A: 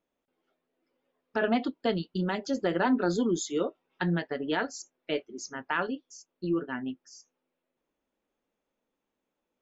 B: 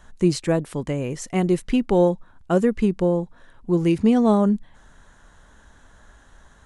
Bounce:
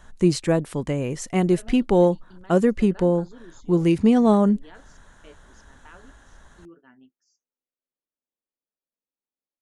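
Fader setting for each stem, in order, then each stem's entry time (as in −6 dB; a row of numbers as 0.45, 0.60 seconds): −19.0, +0.5 decibels; 0.15, 0.00 seconds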